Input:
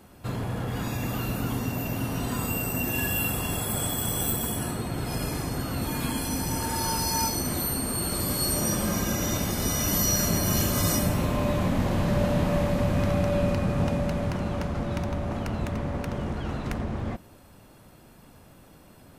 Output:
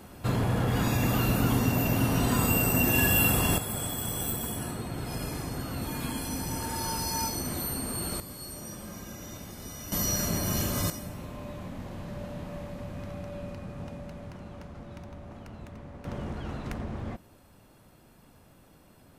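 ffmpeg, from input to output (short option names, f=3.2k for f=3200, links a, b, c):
-af "asetnsamples=n=441:p=0,asendcmd='3.58 volume volume -4.5dB;8.2 volume volume -15dB;9.92 volume volume -4.5dB;10.9 volume volume -14.5dB;16.05 volume volume -5dB',volume=4dB"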